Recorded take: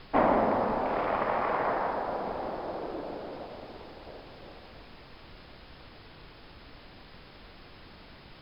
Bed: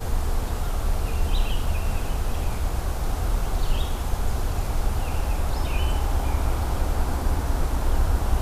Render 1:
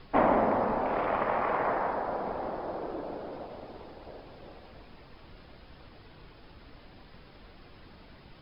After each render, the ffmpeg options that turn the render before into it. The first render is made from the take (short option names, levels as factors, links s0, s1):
-af "afftdn=nr=6:nf=-51"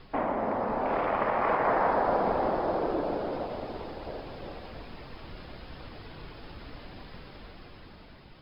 -af "alimiter=limit=0.106:level=0:latency=1:release=407,dynaudnorm=f=390:g=7:m=2.37"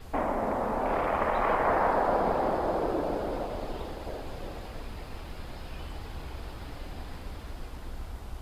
-filter_complex "[1:a]volume=0.126[s0];[0:a][s0]amix=inputs=2:normalize=0"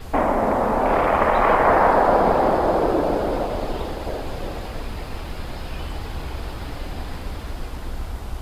-af "volume=2.99"